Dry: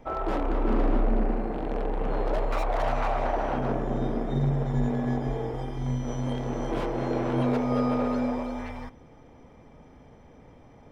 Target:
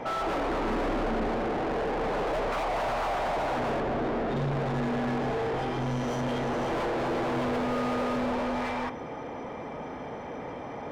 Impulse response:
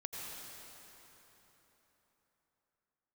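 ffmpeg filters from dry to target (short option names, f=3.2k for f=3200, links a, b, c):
-filter_complex "[0:a]asplit=2[a][b];[b]highpass=f=720:p=1,volume=37dB,asoftclip=type=tanh:threshold=-14dB[c];[a][c]amix=inputs=2:normalize=0,lowpass=f=1.5k:p=1,volume=-6dB,asettb=1/sr,asplit=3[d][e][f];[d]atrim=end=3.804[g];[e]atrim=start=3.8:end=4.37,asetpts=PTS-STARTPTS,afade=t=in:d=0.004:c=qsin,afade=t=out:st=0.566:d=0.004:c=qsin,highshelf=f=4.9k:g=-8.5[h];[f]atrim=start=4.366[i];[g][h]acrossfade=d=0.004:c1=hsin:c2=qsin[j];[j][i]acrossfade=d=0.004:c1=qsin:c2=hsin,volume=-8dB"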